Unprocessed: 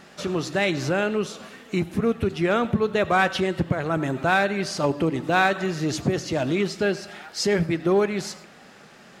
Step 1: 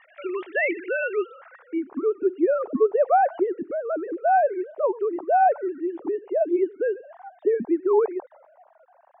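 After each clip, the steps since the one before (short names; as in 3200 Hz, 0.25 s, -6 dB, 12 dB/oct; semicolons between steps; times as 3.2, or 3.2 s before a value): sine-wave speech; low-pass sweep 2200 Hz -> 830 Hz, 1.02–2.18; gain -3 dB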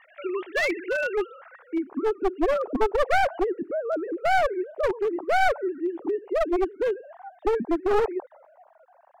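one-sided fold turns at -20 dBFS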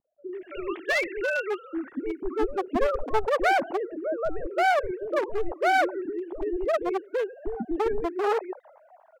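bands offset in time lows, highs 0.33 s, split 360 Hz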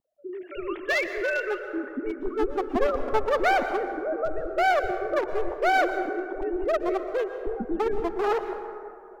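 dynamic EQ 8700 Hz, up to -6 dB, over -59 dBFS, Q 3.2; plate-style reverb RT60 2.4 s, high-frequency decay 0.35×, pre-delay 0.105 s, DRR 8.5 dB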